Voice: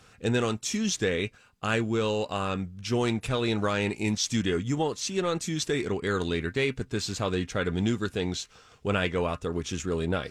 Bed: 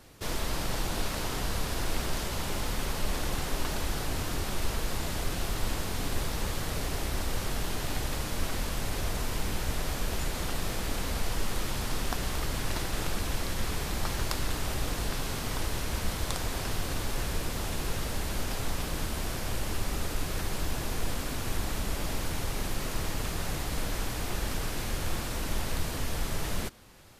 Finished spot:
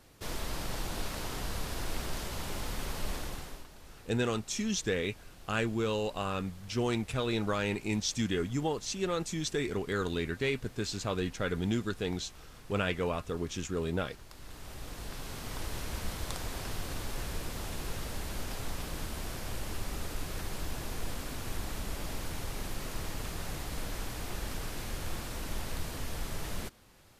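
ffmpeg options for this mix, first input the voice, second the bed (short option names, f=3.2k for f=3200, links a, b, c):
-filter_complex "[0:a]adelay=3850,volume=-4.5dB[a];[1:a]volume=10.5dB,afade=t=out:st=3.1:d=0.57:silence=0.158489,afade=t=in:st=14.29:d=1.5:silence=0.16788[b];[a][b]amix=inputs=2:normalize=0"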